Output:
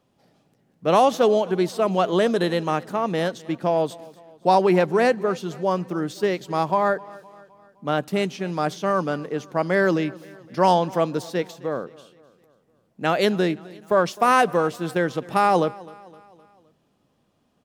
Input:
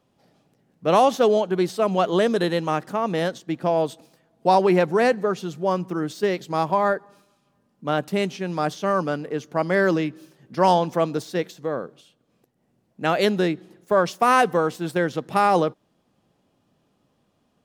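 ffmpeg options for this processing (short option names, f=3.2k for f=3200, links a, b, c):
-af "aecho=1:1:258|516|774|1032:0.0841|0.0429|0.0219|0.0112"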